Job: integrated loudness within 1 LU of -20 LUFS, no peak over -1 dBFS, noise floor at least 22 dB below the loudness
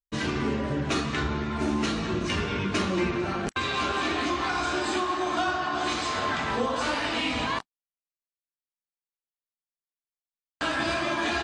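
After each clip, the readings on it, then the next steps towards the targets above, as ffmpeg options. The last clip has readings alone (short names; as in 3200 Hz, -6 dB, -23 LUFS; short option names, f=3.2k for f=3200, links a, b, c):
loudness -27.5 LUFS; peak -15.5 dBFS; loudness target -20.0 LUFS
-> -af "volume=7.5dB"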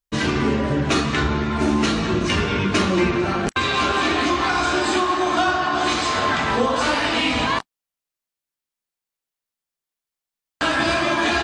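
loudness -20.0 LUFS; peak -8.0 dBFS; noise floor -88 dBFS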